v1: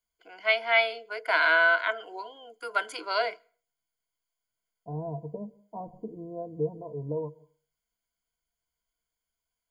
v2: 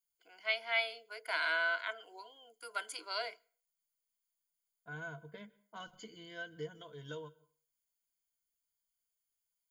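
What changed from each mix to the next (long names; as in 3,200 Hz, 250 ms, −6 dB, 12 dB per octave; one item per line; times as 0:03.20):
second voice: remove Butterworth low-pass 940 Hz 72 dB per octave
master: add first-order pre-emphasis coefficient 0.8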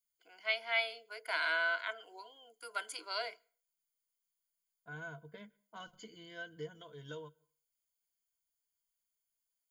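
second voice: send −7.5 dB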